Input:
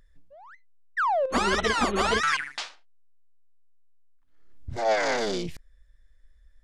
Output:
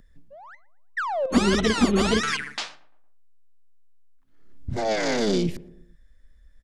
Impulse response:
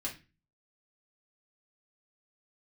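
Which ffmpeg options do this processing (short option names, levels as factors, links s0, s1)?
-filter_complex "[0:a]equalizer=f=210:t=o:w=1.6:g=8.5,acrossover=split=470|2200[s0][s1][s2];[s1]acompressor=threshold=0.0224:ratio=6[s3];[s0][s3][s2]amix=inputs=3:normalize=0,asplit=2[s4][s5];[s5]adelay=115,lowpass=f=1300:p=1,volume=0.119,asplit=2[s6][s7];[s7]adelay=115,lowpass=f=1300:p=1,volume=0.51,asplit=2[s8][s9];[s9]adelay=115,lowpass=f=1300:p=1,volume=0.51,asplit=2[s10][s11];[s11]adelay=115,lowpass=f=1300:p=1,volume=0.51[s12];[s4][s6][s8][s10][s12]amix=inputs=5:normalize=0,volume=1.41"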